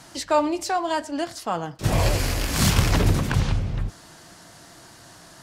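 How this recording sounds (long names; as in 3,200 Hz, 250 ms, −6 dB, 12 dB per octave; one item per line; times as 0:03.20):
background noise floor −48 dBFS
spectral slope −5.0 dB per octave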